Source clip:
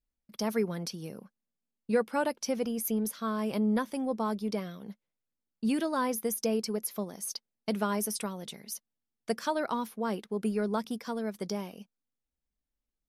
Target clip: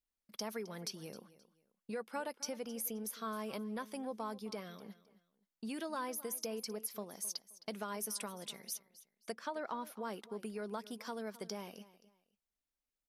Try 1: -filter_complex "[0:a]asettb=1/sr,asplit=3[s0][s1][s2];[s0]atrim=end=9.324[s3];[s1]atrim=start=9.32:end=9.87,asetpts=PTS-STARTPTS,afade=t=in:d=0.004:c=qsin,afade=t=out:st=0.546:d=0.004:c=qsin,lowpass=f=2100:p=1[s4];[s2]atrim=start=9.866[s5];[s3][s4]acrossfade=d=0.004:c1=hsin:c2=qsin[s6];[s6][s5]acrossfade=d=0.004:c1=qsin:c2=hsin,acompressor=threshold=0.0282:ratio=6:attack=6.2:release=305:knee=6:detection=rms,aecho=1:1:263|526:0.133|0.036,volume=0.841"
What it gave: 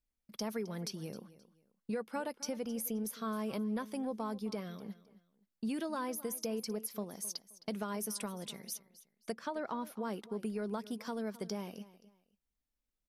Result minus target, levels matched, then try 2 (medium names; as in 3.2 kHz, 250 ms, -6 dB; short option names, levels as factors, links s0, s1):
250 Hz band +3.5 dB
-filter_complex "[0:a]asettb=1/sr,asplit=3[s0][s1][s2];[s0]atrim=end=9.324[s3];[s1]atrim=start=9.32:end=9.87,asetpts=PTS-STARTPTS,afade=t=in:d=0.004:c=qsin,afade=t=out:st=0.546:d=0.004:c=qsin,lowpass=f=2100:p=1[s4];[s2]atrim=start=9.866[s5];[s3][s4]acrossfade=d=0.004:c1=hsin:c2=qsin[s6];[s6][s5]acrossfade=d=0.004:c1=qsin:c2=hsin,acompressor=threshold=0.0282:ratio=6:attack=6.2:release=305:knee=6:detection=rms,lowshelf=f=310:g=-10,aecho=1:1:263|526:0.133|0.036,volume=0.841"